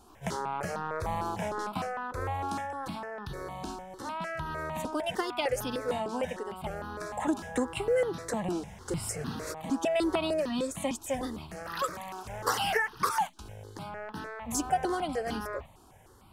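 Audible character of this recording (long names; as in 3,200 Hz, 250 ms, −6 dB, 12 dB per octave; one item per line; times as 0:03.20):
notches that jump at a steady rate 6.6 Hz 540–2,200 Hz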